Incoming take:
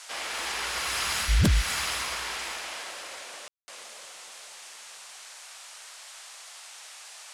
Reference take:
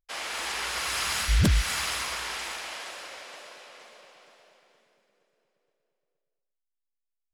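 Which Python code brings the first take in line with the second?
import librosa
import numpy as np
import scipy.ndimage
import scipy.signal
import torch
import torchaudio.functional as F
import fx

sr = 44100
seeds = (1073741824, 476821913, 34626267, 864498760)

y = fx.fix_ambience(x, sr, seeds[0], print_start_s=5.57, print_end_s=6.07, start_s=3.48, end_s=3.68)
y = fx.noise_reduce(y, sr, print_start_s=5.57, print_end_s=6.07, reduce_db=30.0)
y = fx.fix_level(y, sr, at_s=6.59, step_db=11.0)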